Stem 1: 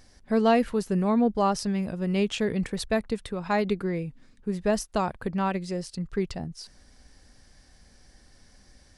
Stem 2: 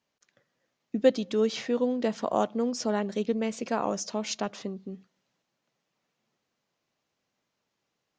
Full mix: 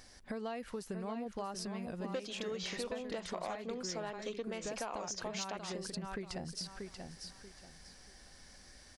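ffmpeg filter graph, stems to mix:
-filter_complex "[0:a]acompressor=threshold=0.0224:ratio=4,volume=1.26,asplit=2[s0][s1];[s1]volume=0.398[s2];[1:a]highpass=f=390:p=1,asoftclip=type=tanh:threshold=0.112,adelay=1100,volume=1.33[s3];[s2]aecho=0:1:635|1270|1905|2540:1|0.27|0.0729|0.0197[s4];[s0][s3][s4]amix=inputs=3:normalize=0,lowshelf=f=400:g=-8,acompressor=threshold=0.0141:ratio=6"

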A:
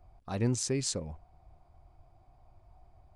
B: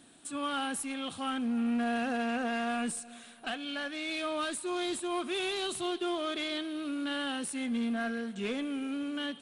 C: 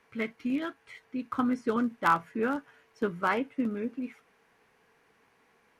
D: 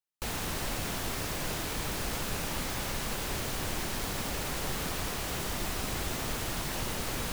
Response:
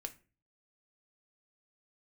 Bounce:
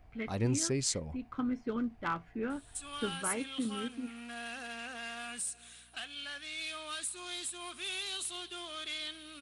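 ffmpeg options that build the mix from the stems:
-filter_complex "[0:a]acontrast=23,volume=0.473[s0];[1:a]tiltshelf=f=970:g=-9,adelay=2500,volume=0.299[s1];[2:a]lowpass=3500,equalizer=f=960:w=0.6:g=-8,volume=0.631[s2];[s0][s1][s2]amix=inputs=3:normalize=0,highshelf=f=4900:g=4.5,aeval=exprs='val(0)+0.000447*(sin(2*PI*60*n/s)+sin(2*PI*2*60*n/s)/2+sin(2*PI*3*60*n/s)/3+sin(2*PI*4*60*n/s)/4+sin(2*PI*5*60*n/s)/5)':c=same"

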